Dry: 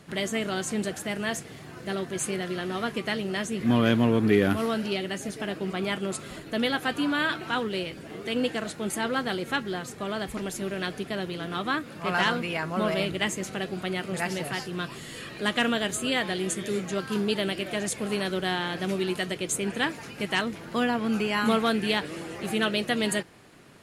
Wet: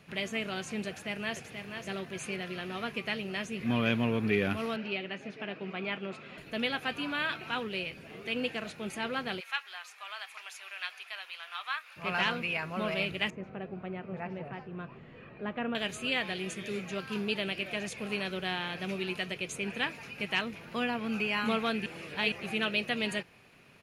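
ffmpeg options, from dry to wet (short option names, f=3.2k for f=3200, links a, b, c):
-filter_complex "[0:a]asplit=2[a][b];[b]afade=t=in:st=0.88:d=0.01,afade=t=out:st=1.52:d=0.01,aecho=0:1:480|960:0.473151|0.0473151[c];[a][c]amix=inputs=2:normalize=0,asettb=1/sr,asplit=3[d][e][f];[d]atrim=end=4.764[g];[e]atrim=start=4.76:end=6.38,asetpts=PTS-STARTPTS,afade=t=in:d=0.004:c=qsin,afade=t=out:st=1.616:d=0.004:c=qsin,highpass=160,lowpass=3.2k[h];[f]atrim=start=6.376[i];[g][h]acrossfade=d=0.004:c1=hsin:c2=qsin[j];[j][i]acrossfade=d=0.004:c1=qsin:c2=hsin,asplit=3[k][l][m];[k]afade=t=out:st=9.39:d=0.02[n];[l]highpass=f=910:w=0.5412,highpass=f=910:w=1.3066,afade=t=in:st=9.39:d=0.02,afade=t=out:st=11.96:d=0.02[o];[m]afade=t=in:st=11.96:d=0.02[p];[n][o][p]amix=inputs=3:normalize=0,asettb=1/sr,asplit=3[q][r][s];[q]atrim=end=13.304[t];[r]atrim=start=13.3:end=15.75,asetpts=PTS-STARTPTS,afade=t=in:d=0.004:c=qsin,afade=t=out:st=2.446:d=0.004:c=qsin,lowpass=1.1k[u];[s]atrim=start=15.746[v];[t][u]acrossfade=d=0.004:c1=hsin:c2=qsin[w];[w][v]acrossfade=d=0.004:c1=qsin:c2=hsin,asplit=3[x][y][z];[x]atrim=end=21.862[aa];[y]atrim=start=21.858:end=22.322,asetpts=PTS-STARTPTS,areverse[ab];[z]atrim=start=22.318[ac];[aa][ab]acrossfade=d=0.004:c1=hsin:c2=hsin[ad];[ad][ac]acrossfade=d=0.004:c1=hsin:c2=hsin,equalizer=f=315:t=o:w=0.33:g=-7,equalizer=f=2.5k:t=o:w=0.33:g=11,equalizer=f=8k:t=o:w=0.33:g=-9,acrossover=split=9600[ae][af];[af]acompressor=threshold=-59dB:ratio=4:attack=1:release=60[ag];[ae][ag]amix=inputs=2:normalize=0,volume=-6.5dB"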